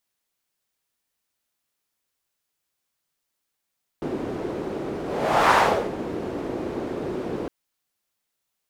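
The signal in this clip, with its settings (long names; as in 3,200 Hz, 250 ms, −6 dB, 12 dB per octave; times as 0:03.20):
pass-by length 3.46 s, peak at 0:01.52, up 0.57 s, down 0.42 s, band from 360 Hz, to 1,000 Hz, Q 1.9, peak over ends 13.5 dB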